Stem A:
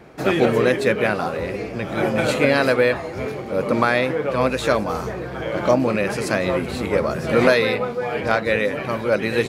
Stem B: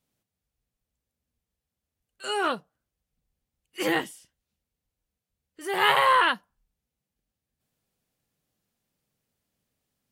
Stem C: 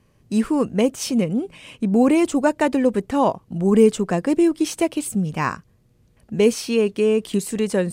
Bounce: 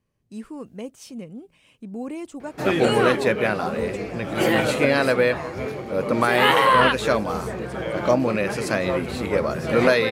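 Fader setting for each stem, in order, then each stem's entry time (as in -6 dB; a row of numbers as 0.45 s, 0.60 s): -2.0 dB, +3.0 dB, -16.0 dB; 2.40 s, 0.60 s, 0.00 s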